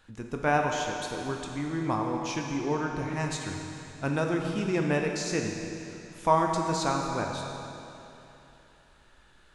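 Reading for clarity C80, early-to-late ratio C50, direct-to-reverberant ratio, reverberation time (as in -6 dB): 3.5 dB, 2.5 dB, 1.0 dB, 3.0 s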